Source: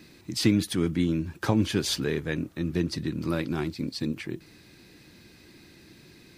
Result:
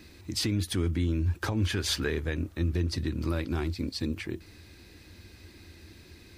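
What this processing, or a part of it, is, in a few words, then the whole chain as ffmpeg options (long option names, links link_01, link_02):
car stereo with a boomy subwoofer: -filter_complex "[0:a]lowshelf=frequency=110:width_type=q:width=3:gain=7,alimiter=limit=-19dB:level=0:latency=1:release=163,asettb=1/sr,asplit=3[link_01][link_02][link_03];[link_01]atrim=end=1.624[link_04];[link_02]atrim=start=1.62:end=2.11,asetpts=PTS-STARTPTS,afade=type=in:duration=0.004:curve=qsin,afade=type=out:start_time=0.486:duration=0.004:curve=qsin,equalizer=frequency=1600:width_type=o:width=1.3:gain=6[link_05];[link_03]atrim=start=2.106[link_06];[link_04][link_05]acrossfade=duration=0.004:curve1=hsin:curve2=qsin[link_07];[link_07][link_06]acrossfade=duration=0.004:curve1=qsin:curve2=hsin"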